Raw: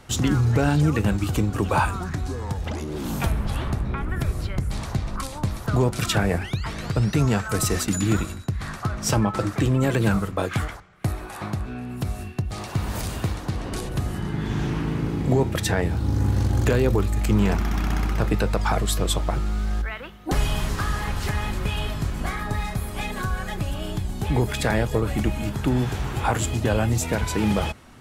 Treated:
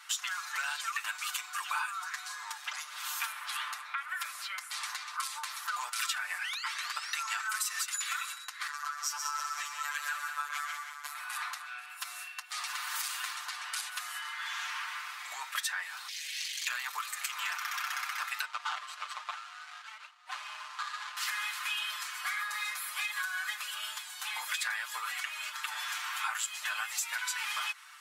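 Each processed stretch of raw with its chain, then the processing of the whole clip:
0:08.67–0:11.15: echo machine with several playback heads 62 ms, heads second and third, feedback 55%, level −8.5 dB + phases set to zero 146 Hz + string-ensemble chorus
0:16.08–0:16.68: inverse Chebyshev band-stop filter 570–1,300 Hz, stop band 50 dB + mid-hump overdrive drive 18 dB, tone 2,500 Hz, clips at −11.5 dBFS
0:18.45–0:21.17: running median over 25 samples + low-pass filter 7,200 Hz
0:25.11–0:25.63: high-pass filter 590 Hz + high-shelf EQ 8,800 Hz −7 dB
whole clip: Butterworth high-pass 1,100 Hz 36 dB per octave; comb filter 6.7 ms, depth 88%; downward compressor 6 to 1, threshold −31 dBFS

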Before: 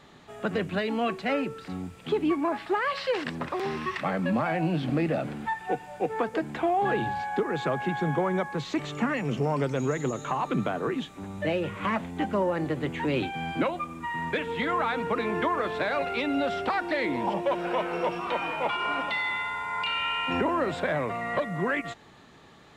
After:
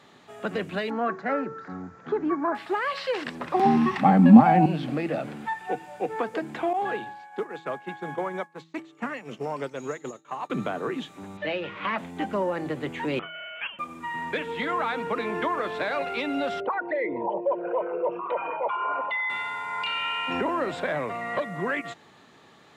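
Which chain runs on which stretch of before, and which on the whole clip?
0:00.90–0:02.55: high-pass filter 49 Hz + high shelf with overshoot 2,100 Hz −10 dB, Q 3 + bad sample-rate conversion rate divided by 3×, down none, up filtered
0:03.54–0:04.66: parametric band 90 Hz +7.5 dB 2.2 octaves + hollow resonant body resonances 230/780 Hz, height 17 dB, ringing for 35 ms
0:06.73–0:10.50: downward expander −24 dBFS + low-shelf EQ 170 Hz −11 dB
0:11.37–0:11.98: low-pass filter 4,300 Hz 24 dB per octave + spectral tilt +2 dB per octave
0:13.19–0:13.79: high-pass filter 1,000 Hz 24 dB per octave + voice inversion scrambler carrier 3,800 Hz
0:16.60–0:19.30: spectral envelope exaggerated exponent 2 + Gaussian smoothing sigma 2 samples + comb filter 2 ms, depth 33%
whole clip: high-pass filter 78 Hz; low-shelf EQ 120 Hz −9 dB; hum removal 162.9 Hz, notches 2

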